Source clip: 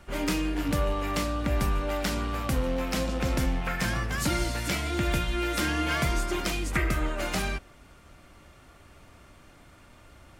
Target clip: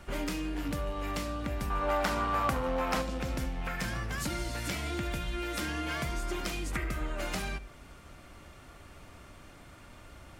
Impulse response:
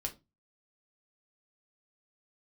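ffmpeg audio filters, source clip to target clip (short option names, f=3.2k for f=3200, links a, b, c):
-filter_complex "[0:a]acompressor=threshold=-34dB:ratio=4,asettb=1/sr,asplit=3[a][b][c];[a]atrim=end=1.704[d];[b]atrim=start=1.7:end=3.02,asetpts=PTS-STARTPTS,afade=t=in:d=0.004:c=qsin,afade=t=out:st=1.316:d=0.004:c=qsin,equalizer=f=1k:t=o:w=1.8:g=12[e];[c]atrim=start=3.016[f];[d][e]acrossfade=d=0.004:c1=hsin:c2=qsin[g];[g][f]acrossfade=d=0.004:c1=qsin:c2=hsin,asplit=2[h][i];[1:a]atrim=start_sample=2205,adelay=70[j];[i][j]afir=irnorm=-1:irlink=0,volume=-18dB[k];[h][k]amix=inputs=2:normalize=0,volume=1.5dB"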